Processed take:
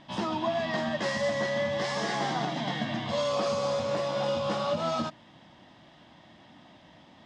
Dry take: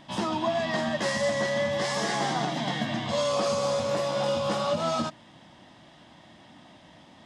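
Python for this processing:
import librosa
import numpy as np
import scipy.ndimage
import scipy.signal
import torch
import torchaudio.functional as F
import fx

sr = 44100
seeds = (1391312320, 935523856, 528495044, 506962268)

y = scipy.signal.sosfilt(scipy.signal.butter(2, 5700.0, 'lowpass', fs=sr, output='sos'), x)
y = F.gain(torch.from_numpy(y), -2.0).numpy()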